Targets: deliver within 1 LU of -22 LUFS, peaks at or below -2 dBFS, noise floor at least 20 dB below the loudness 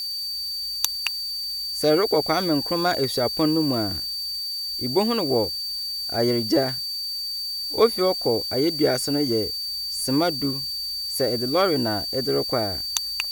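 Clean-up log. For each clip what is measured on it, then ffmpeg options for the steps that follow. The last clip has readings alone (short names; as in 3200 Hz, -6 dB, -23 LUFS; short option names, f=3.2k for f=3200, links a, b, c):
steady tone 4600 Hz; tone level -27 dBFS; noise floor -30 dBFS; noise floor target -43 dBFS; loudness -23.0 LUFS; peak -2.0 dBFS; loudness target -22.0 LUFS
-> -af "bandreject=f=4.6k:w=30"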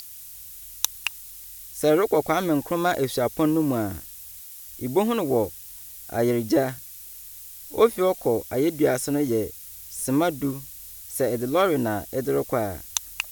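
steady tone none; noise floor -42 dBFS; noise floor target -45 dBFS
-> -af "afftdn=nr=6:nf=-42"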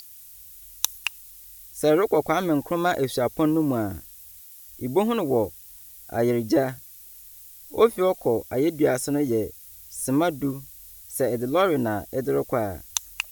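noise floor -46 dBFS; loudness -24.5 LUFS; peak -2.5 dBFS; loudness target -22.0 LUFS
-> -af "volume=2.5dB,alimiter=limit=-2dB:level=0:latency=1"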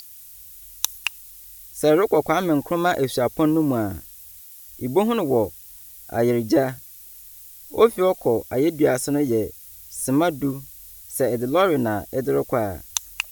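loudness -22.0 LUFS; peak -2.0 dBFS; noise floor -44 dBFS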